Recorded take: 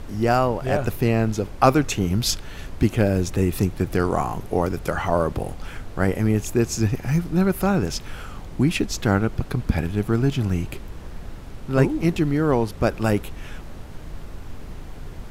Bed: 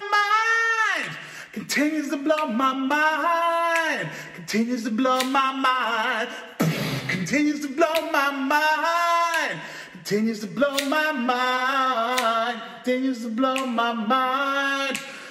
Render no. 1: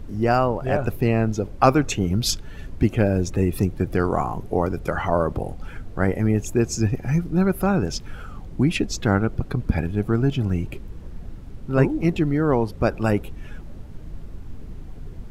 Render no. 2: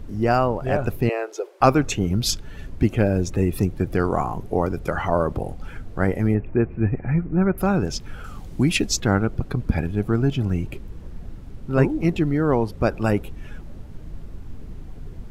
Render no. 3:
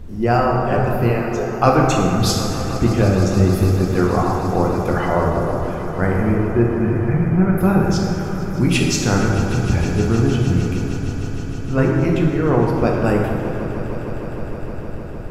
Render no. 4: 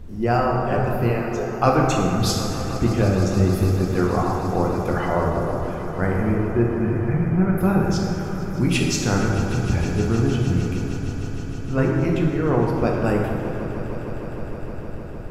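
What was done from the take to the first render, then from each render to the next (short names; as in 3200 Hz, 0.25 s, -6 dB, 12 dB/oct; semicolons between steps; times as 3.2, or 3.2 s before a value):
denoiser 10 dB, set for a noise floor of -37 dBFS
1.09–1.61 Chebyshev high-pass 360 Hz, order 6; 6.34–7.58 steep low-pass 2400 Hz 48 dB/oct; 8.24–9 high shelf 3100 Hz +9.5 dB
swelling echo 0.154 s, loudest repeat 5, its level -17.5 dB; plate-style reverb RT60 2.5 s, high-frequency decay 0.5×, DRR -1.5 dB
gain -3.5 dB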